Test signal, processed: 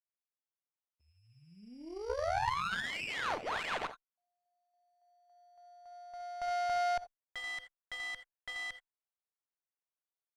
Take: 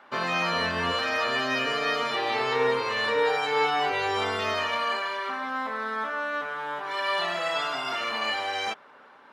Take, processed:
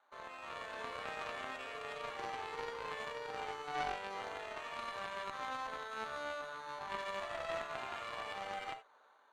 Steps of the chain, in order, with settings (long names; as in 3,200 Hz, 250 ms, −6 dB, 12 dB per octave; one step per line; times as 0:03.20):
brickwall limiter −23 dBFS
sample-rate reduction 5,200 Hz, jitter 0%
automatic gain control gain up to 5 dB
high-pass filter 560 Hz 12 dB per octave
high-shelf EQ 2,500 Hz −11.5 dB
reverb whose tail is shaped and stops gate 100 ms rising, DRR 5.5 dB
harmonic generator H 2 −24 dB, 3 −12 dB, 4 −27 dB, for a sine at −14 dBFS
high-frequency loss of the air 74 metres
tube saturation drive 23 dB, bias 0.7